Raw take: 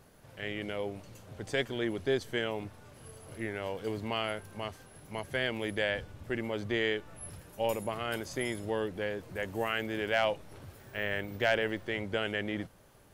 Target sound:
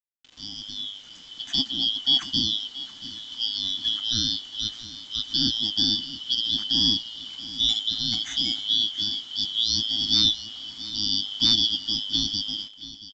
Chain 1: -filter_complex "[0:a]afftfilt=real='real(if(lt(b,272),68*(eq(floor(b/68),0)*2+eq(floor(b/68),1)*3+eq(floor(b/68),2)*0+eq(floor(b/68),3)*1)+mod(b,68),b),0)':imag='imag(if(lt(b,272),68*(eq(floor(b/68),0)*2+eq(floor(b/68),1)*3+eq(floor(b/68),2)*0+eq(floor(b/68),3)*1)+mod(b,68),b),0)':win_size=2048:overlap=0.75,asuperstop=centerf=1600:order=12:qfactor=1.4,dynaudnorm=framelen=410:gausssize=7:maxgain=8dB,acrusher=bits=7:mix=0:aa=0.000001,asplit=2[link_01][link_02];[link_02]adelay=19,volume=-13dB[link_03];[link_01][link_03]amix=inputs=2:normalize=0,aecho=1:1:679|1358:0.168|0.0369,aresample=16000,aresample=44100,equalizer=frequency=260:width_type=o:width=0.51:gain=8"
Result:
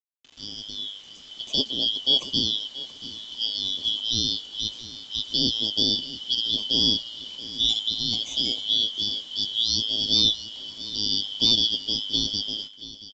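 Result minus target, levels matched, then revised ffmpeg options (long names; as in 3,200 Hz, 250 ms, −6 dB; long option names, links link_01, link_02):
500 Hz band +11.5 dB
-filter_complex "[0:a]afftfilt=real='real(if(lt(b,272),68*(eq(floor(b/68),0)*2+eq(floor(b/68),1)*3+eq(floor(b/68),2)*0+eq(floor(b/68),3)*1)+mod(b,68),b),0)':imag='imag(if(lt(b,272),68*(eq(floor(b/68),0)*2+eq(floor(b/68),1)*3+eq(floor(b/68),2)*0+eq(floor(b/68),3)*1)+mod(b,68),b),0)':win_size=2048:overlap=0.75,asuperstop=centerf=480:order=12:qfactor=1.4,dynaudnorm=framelen=410:gausssize=7:maxgain=8dB,acrusher=bits=7:mix=0:aa=0.000001,asplit=2[link_01][link_02];[link_02]adelay=19,volume=-13dB[link_03];[link_01][link_03]amix=inputs=2:normalize=0,aecho=1:1:679|1358:0.168|0.0369,aresample=16000,aresample=44100,equalizer=frequency=260:width_type=o:width=0.51:gain=8"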